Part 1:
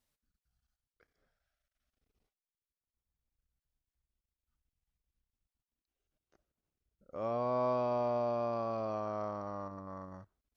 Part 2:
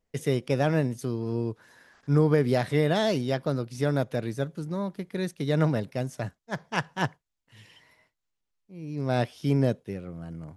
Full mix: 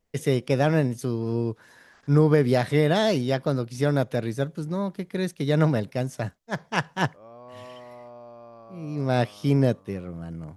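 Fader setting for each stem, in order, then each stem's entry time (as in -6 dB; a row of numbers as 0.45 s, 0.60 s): -11.5 dB, +3.0 dB; 0.00 s, 0.00 s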